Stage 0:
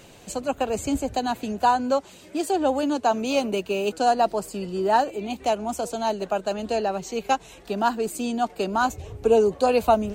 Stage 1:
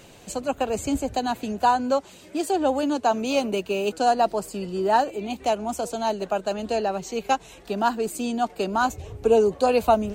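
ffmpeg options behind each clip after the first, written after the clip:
-af anull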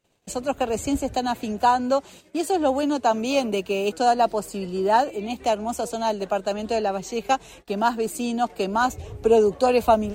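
-af "agate=range=-30dB:threshold=-45dB:ratio=16:detection=peak,volume=1dB"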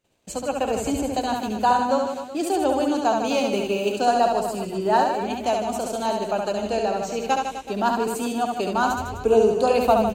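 -af "aecho=1:1:70|154|254.8|375.8|520.9:0.631|0.398|0.251|0.158|0.1,volume=-1.5dB"

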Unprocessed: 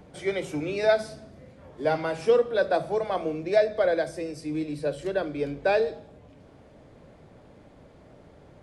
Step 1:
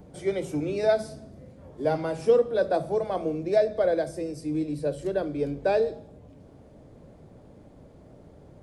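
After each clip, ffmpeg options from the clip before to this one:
-af "equalizer=f=2.2k:t=o:w=2.9:g=-10,volume=3dB"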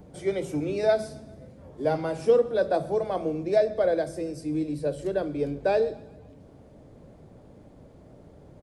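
-af "aecho=1:1:132|264|396|528:0.075|0.0427|0.0244|0.0139"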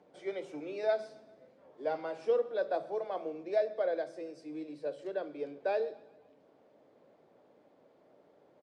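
-af "highpass=420,lowpass=4.3k,volume=-7dB"

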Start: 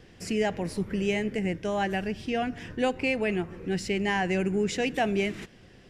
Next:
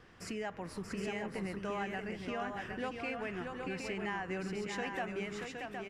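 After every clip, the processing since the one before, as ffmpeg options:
-filter_complex "[0:a]equalizer=f=1.2k:w=1.4:g=14,acompressor=threshold=-30dB:ratio=3,asplit=2[a][b];[b]aecho=0:1:632|766:0.531|0.531[c];[a][c]amix=inputs=2:normalize=0,volume=-8.5dB"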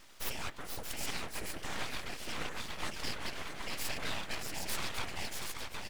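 -af "afftfilt=real='hypot(re,im)*cos(2*PI*random(0))':imag='hypot(re,im)*sin(2*PI*random(1))':win_size=512:overlap=0.75,crystalizer=i=6.5:c=0,aeval=exprs='abs(val(0))':c=same,volume=5dB"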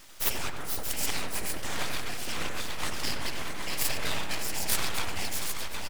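-filter_complex "[0:a]highshelf=f=6.5k:g=8.5,asplit=2[a][b];[b]acrusher=bits=3:mix=0:aa=0.000001,volume=-7.5dB[c];[a][c]amix=inputs=2:normalize=0,asplit=2[d][e];[e]adelay=90,lowpass=f=1.7k:p=1,volume=-4.5dB,asplit=2[f][g];[g]adelay=90,lowpass=f=1.7k:p=1,volume=0.53,asplit=2[h][i];[i]adelay=90,lowpass=f=1.7k:p=1,volume=0.53,asplit=2[j][k];[k]adelay=90,lowpass=f=1.7k:p=1,volume=0.53,asplit=2[l][m];[m]adelay=90,lowpass=f=1.7k:p=1,volume=0.53,asplit=2[n][o];[o]adelay=90,lowpass=f=1.7k:p=1,volume=0.53,asplit=2[p][q];[q]adelay=90,lowpass=f=1.7k:p=1,volume=0.53[r];[d][f][h][j][l][n][p][r]amix=inputs=8:normalize=0,volume=4dB"

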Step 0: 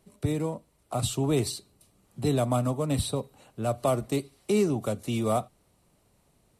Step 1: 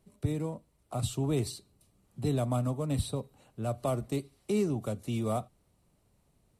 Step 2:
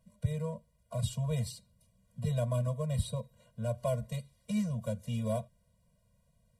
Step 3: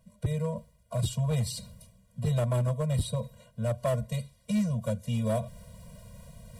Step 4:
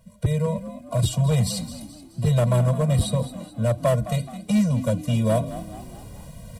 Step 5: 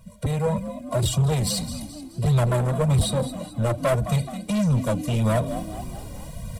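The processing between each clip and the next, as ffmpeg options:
-af "lowshelf=f=220:g=6.5,volume=-7dB"
-af "afftfilt=real='re*eq(mod(floor(b*sr/1024/230),2),0)':imag='im*eq(mod(floor(b*sr/1024/230),2),0)':win_size=1024:overlap=0.75"
-af "areverse,acompressor=mode=upward:threshold=-37dB:ratio=2.5,areverse,asoftclip=type=hard:threshold=-27dB,volume=5dB"
-filter_complex "[0:a]asplit=5[a][b][c][d][e];[b]adelay=213,afreqshift=48,volume=-13.5dB[f];[c]adelay=426,afreqshift=96,volume=-20.4dB[g];[d]adelay=639,afreqshift=144,volume=-27.4dB[h];[e]adelay=852,afreqshift=192,volume=-34.3dB[i];[a][f][g][h][i]amix=inputs=5:normalize=0,volume=7.5dB"
-af "asoftclip=type=tanh:threshold=-21.5dB,flanger=delay=0.8:depth=3.1:regen=44:speed=1.7:shape=sinusoidal,volume=8.5dB"

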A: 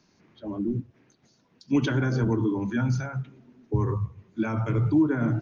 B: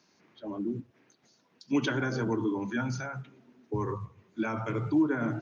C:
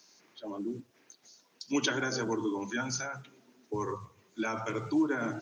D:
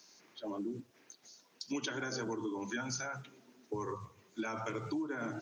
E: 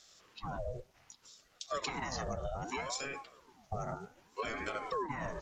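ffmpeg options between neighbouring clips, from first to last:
-af "highpass=f=370:p=1"
-af "bass=f=250:g=-9,treble=f=4k:g=13"
-af "acompressor=threshold=-35dB:ratio=5"
-af "aresample=32000,aresample=44100,aeval=exprs='val(0)*sin(2*PI*610*n/s+610*0.6/0.64*sin(2*PI*0.64*n/s))':c=same,volume=3dB"

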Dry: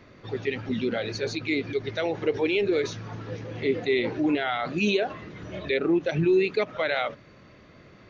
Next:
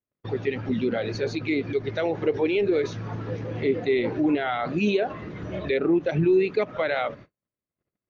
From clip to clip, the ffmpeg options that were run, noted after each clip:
-filter_complex "[0:a]agate=range=-48dB:threshold=-45dB:ratio=16:detection=peak,highshelf=f=2.3k:g=-9.5,asplit=2[a][b];[b]acompressor=threshold=-33dB:ratio=6,volume=-1dB[c];[a][c]amix=inputs=2:normalize=0"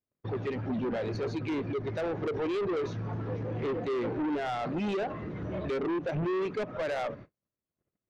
-af "highshelf=f=2.1k:g=-10,asoftclip=type=tanh:threshold=-28dB"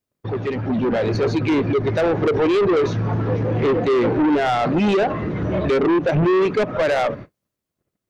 -af "dynaudnorm=f=100:g=17:m=5dB,volume=8.5dB"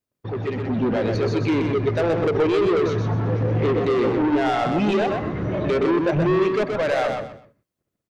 -af "aecho=1:1:126|252|378:0.562|0.146|0.038,volume=-3.5dB"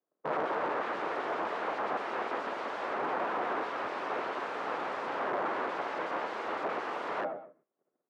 -af "afreqshift=42,aeval=exprs='(mod(18.8*val(0)+1,2)-1)/18.8':c=same,asuperpass=centerf=670:order=4:qfactor=0.68,volume=2.5dB"

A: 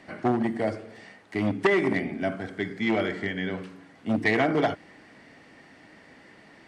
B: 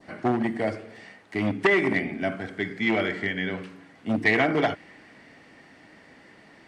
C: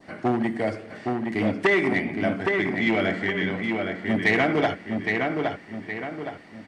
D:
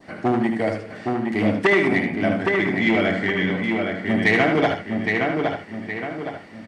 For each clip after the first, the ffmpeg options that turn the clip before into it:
-af "adynamicequalizer=threshold=0.0112:dfrequency=2300:dqfactor=1.2:tfrequency=2300:tqfactor=1.2:attack=5:release=100:ratio=0.375:range=2.5:mode=boostabove:tftype=bell"
-filter_complex "[0:a]asplit=2[a][b];[b]adelay=816,lowpass=f=3.4k:p=1,volume=-4dB,asplit=2[c][d];[d]adelay=816,lowpass=f=3.4k:p=1,volume=0.43,asplit=2[e][f];[f]adelay=816,lowpass=f=3.4k:p=1,volume=0.43,asplit=2[g][h];[h]adelay=816,lowpass=f=3.4k:p=1,volume=0.43,asplit=2[i][j];[j]adelay=816,lowpass=f=3.4k:p=1,volume=0.43[k];[a][c][e][g][i][k]amix=inputs=6:normalize=0,asplit=2[l][m];[m]asoftclip=type=tanh:threshold=-18dB,volume=-5dB[n];[l][n]amix=inputs=2:normalize=0,volume=-2.5dB"
-af "aecho=1:1:76:0.447,volume=2.5dB"

